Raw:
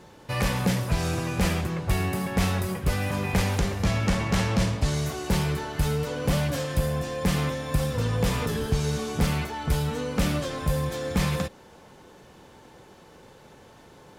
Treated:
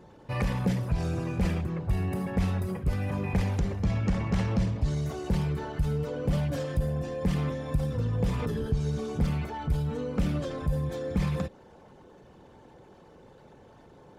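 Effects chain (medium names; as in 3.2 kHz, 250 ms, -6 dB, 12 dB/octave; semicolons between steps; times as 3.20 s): resonances exaggerated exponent 1.5; trim -2.5 dB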